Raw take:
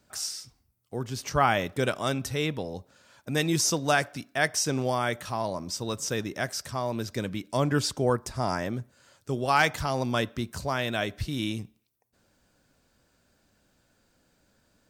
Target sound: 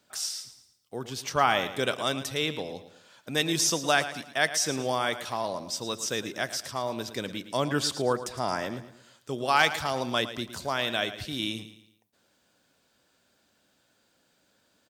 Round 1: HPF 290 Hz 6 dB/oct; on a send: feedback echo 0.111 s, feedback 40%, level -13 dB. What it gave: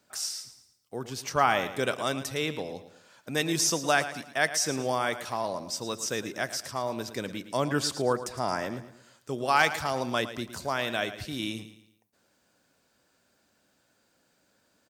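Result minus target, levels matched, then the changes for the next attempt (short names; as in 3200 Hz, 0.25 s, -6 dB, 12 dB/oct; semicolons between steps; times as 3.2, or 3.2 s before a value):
4000 Hz band -2.5 dB
add after HPF: bell 3400 Hz +5.5 dB 0.54 oct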